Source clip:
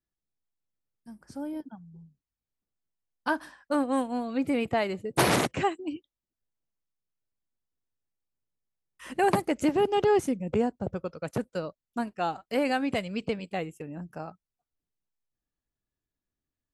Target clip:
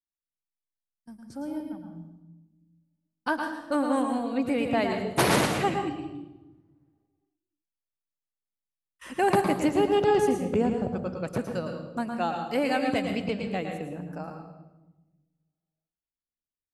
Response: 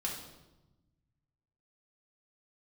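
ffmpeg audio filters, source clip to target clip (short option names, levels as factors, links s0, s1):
-filter_complex "[0:a]agate=range=0.158:threshold=0.00251:ratio=16:detection=peak,asplit=2[s0][s1];[1:a]atrim=start_sample=2205,adelay=110[s2];[s1][s2]afir=irnorm=-1:irlink=0,volume=0.501[s3];[s0][s3]amix=inputs=2:normalize=0"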